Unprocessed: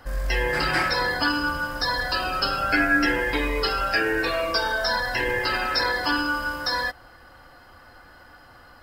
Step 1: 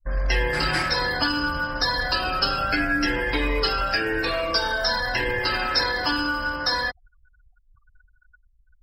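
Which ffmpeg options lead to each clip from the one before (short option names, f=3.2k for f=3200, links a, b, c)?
-filter_complex "[0:a]anlmdn=0.398,afftfilt=real='re*gte(hypot(re,im),0.00501)':imag='im*gte(hypot(re,im),0.00501)':win_size=1024:overlap=0.75,acrossover=split=230|3000[a][b][c];[b]acompressor=threshold=-26dB:ratio=6[d];[a][d][c]amix=inputs=3:normalize=0,volume=3dB"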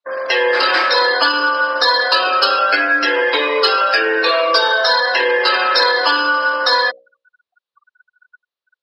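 -af "highpass=f=400:w=0.5412,highpass=f=400:w=1.3066,equalizer=f=520:t=q:w=4:g=5,equalizer=f=760:t=q:w=4:g=-4,equalizer=f=1.1k:t=q:w=4:g=4,equalizer=f=2.1k:t=q:w=4:g=-4,equalizer=f=3.9k:t=q:w=4:g=5,lowpass=f=4.5k:w=0.5412,lowpass=f=4.5k:w=1.3066,acontrast=54,bandreject=f=60:t=h:w=6,bandreject=f=120:t=h:w=6,bandreject=f=180:t=h:w=6,bandreject=f=240:t=h:w=6,bandreject=f=300:t=h:w=6,bandreject=f=360:t=h:w=6,bandreject=f=420:t=h:w=6,bandreject=f=480:t=h:w=6,bandreject=f=540:t=h:w=6,bandreject=f=600:t=h:w=6,volume=4dB"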